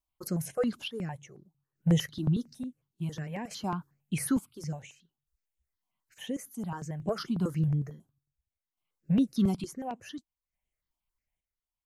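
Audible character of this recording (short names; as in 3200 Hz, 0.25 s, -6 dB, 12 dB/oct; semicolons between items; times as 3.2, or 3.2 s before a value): chopped level 0.57 Hz, depth 60%, duty 50%; notches that jump at a steady rate 11 Hz 490–4700 Hz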